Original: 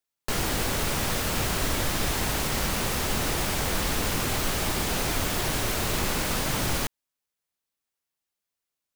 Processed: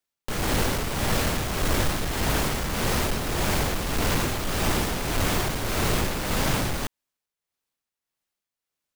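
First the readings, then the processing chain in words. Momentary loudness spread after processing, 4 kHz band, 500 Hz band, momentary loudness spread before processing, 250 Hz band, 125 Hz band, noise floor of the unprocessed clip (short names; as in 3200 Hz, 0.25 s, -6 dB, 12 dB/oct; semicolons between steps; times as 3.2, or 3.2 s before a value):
2 LU, -0.5 dB, +2.5 dB, 0 LU, +3.0 dB, +3.0 dB, under -85 dBFS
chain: half-waves squared off; tremolo 1.7 Hz, depth 49%; gain -1 dB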